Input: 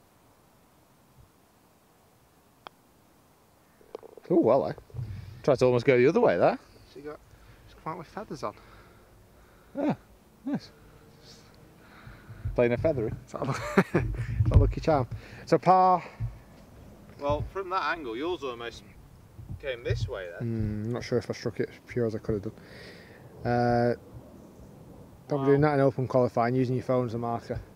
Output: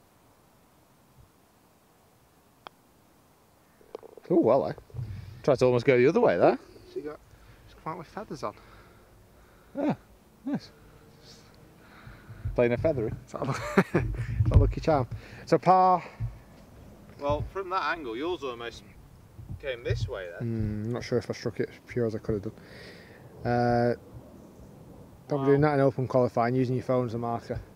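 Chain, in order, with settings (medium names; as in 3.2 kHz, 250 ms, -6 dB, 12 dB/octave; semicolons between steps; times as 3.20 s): 6.43–7.08 s: peaking EQ 360 Hz +15 dB 0.34 oct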